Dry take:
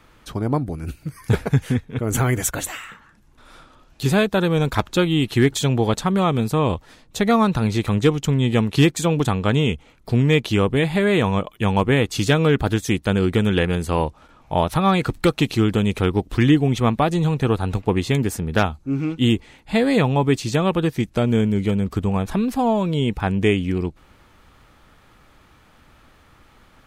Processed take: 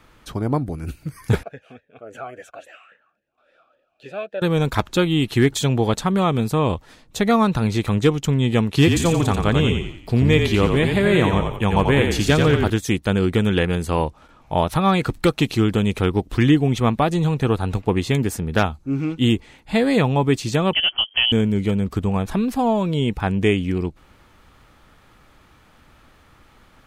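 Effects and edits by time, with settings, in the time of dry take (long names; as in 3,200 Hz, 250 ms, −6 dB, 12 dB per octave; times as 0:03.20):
0:01.43–0:04.42: formant filter swept between two vowels a-e 3.6 Hz
0:08.76–0:12.70: echo with shifted repeats 88 ms, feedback 44%, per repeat −35 Hz, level −5 dB
0:20.73–0:21.32: voice inversion scrambler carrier 3,200 Hz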